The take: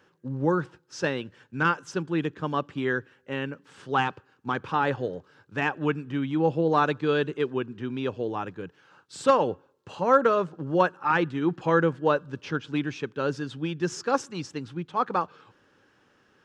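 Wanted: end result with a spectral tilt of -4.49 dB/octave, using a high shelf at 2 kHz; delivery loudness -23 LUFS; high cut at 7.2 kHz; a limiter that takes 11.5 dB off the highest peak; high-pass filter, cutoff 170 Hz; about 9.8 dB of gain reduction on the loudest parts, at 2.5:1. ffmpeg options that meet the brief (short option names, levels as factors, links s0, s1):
-af "highpass=170,lowpass=7200,highshelf=f=2000:g=5.5,acompressor=threshold=0.0398:ratio=2.5,volume=5.31,alimiter=limit=0.266:level=0:latency=1"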